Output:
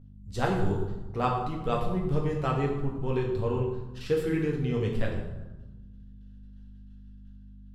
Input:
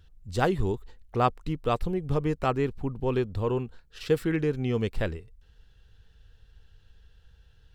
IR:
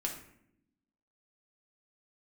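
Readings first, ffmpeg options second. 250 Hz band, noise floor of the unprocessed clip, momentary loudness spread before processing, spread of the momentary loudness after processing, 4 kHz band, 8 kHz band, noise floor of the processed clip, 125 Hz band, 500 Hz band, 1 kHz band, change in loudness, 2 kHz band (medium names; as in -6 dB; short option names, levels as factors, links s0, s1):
-1.0 dB, -59 dBFS, 9 LU, 11 LU, -2.5 dB, no reading, -48 dBFS, +0.5 dB, -1.5 dB, -1.5 dB, -1.0 dB, -2.0 dB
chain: -filter_complex "[0:a]agate=range=0.0224:threshold=0.00562:ratio=3:detection=peak,aeval=exprs='val(0)+0.00631*(sin(2*PI*50*n/s)+sin(2*PI*2*50*n/s)/2+sin(2*PI*3*50*n/s)/3+sin(2*PI*4*50*n/s)/4+sin(2*PI*5*50*n/s)/5)':c=same[s0];[1:a]atrim=start_sample=2205,asetrate=26019,aresample=44100[s1];[s0][s1]afir=irnorm=-1:irlink=0,volume=0.447"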